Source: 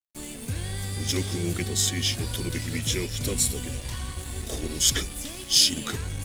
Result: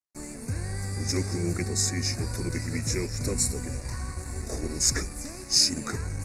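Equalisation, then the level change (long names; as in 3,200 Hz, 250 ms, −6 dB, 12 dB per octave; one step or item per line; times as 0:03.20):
Butterworth band-reject 3,200 Hz, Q 1.4
low-pass filter 9,000 Hz 12 dB per octave
0.0 dB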